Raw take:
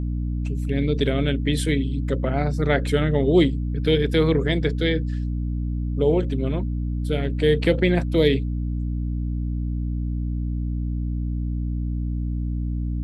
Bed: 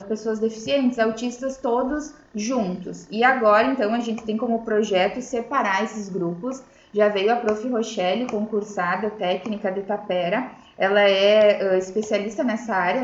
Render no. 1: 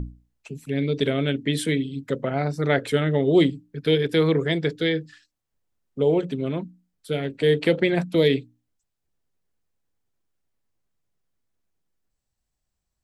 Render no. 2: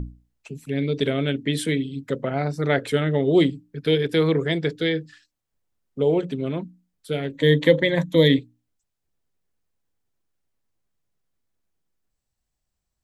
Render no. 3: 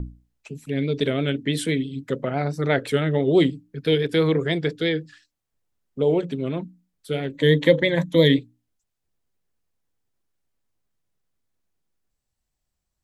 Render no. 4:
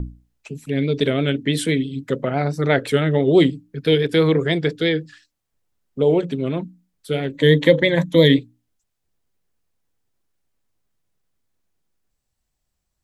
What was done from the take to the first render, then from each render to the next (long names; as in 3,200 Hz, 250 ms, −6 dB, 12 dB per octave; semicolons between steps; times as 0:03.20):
mains-hum notches 60/120/180/240/300 Hz
0:07.33–0:08.39: EQ curve with evenly spaced ripples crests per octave 1.1, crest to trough 13 dB
pitch vibrato 6 Hz 46 cents
level +3.5 dB; brickwall limiter −2 dBFS, peak gain reduction 1.5 dB